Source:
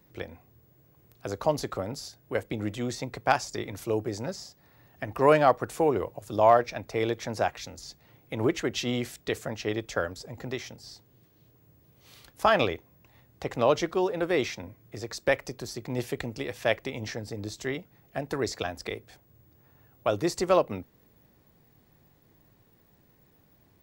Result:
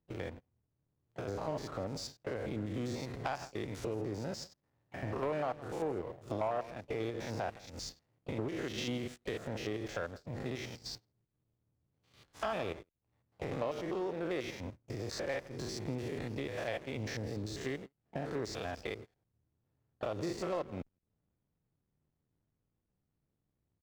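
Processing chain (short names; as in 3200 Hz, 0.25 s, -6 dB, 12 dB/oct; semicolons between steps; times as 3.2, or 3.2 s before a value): stepped spectrum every 0.1 s; compressor 3:1, threshold -49 dBFS, peak gain reduction 23.5 dB; LPF 8200 Hz 12 dB/oct; echo 0.166 s -16.5 dB; backlash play -57.5 dBFS; gate -54 dBFS, range -26 dB; harmoniser +4 st -18 dB; soft clip -35 dBFS, distortion -20 dB; gain +10 dB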